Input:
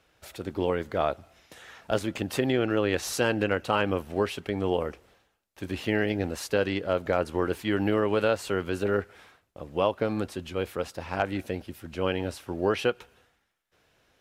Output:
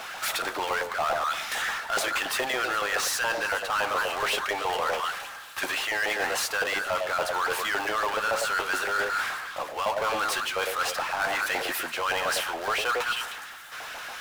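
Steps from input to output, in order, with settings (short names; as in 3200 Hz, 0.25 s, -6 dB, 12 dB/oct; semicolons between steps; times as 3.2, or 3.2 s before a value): notch 970 Hz, Q 28; in parallel at -10 dB: Schmitt trigger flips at -22 dBFS; on the sum: LFO high-pass saw up 7.1 Hz 750–1600 Hz; delay with a stepping band-pass 0.104 s, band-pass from 520 Hz, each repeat 1.4 oct, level -7.5 dB; reverse; compressor, threshold -39 dBFS, peak gain reduction 20 dB; reverse; power-law curve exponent 0.5; gain +8.5 dB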